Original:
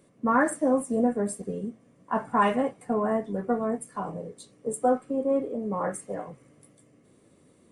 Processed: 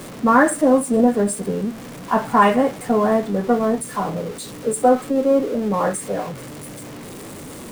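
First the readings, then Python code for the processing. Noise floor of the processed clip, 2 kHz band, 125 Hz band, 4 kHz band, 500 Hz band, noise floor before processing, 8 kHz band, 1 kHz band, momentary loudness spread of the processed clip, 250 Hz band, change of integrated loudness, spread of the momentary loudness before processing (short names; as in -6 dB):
-36 dBFS, +9.0 dB, +10.0 dB, +13.0 dB, +8.5 dB, -61 dBFS, +11.0 dB, +8.5 dB, 19 LU, +9.0 dB, +8.5 dB, 13 LU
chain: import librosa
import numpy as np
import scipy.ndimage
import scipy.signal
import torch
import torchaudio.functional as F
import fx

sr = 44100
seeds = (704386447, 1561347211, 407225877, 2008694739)

y = x + 0.5 * 10.0 ** (-38.5 / 20.0) * np.sign(x)
y = y * 10.0 ** (8.0 / 20.0)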